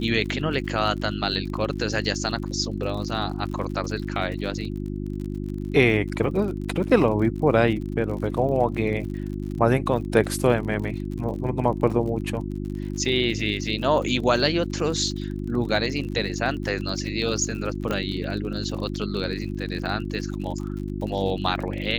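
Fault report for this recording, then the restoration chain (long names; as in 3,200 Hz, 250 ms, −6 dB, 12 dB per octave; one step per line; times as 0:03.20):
surface crackle 52 per second −33 dBFS
mains hum 50 Hz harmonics 7 −30 dBFS
0:17.91: click −13 dBFS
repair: click removal
hum removal 50 Hz, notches 7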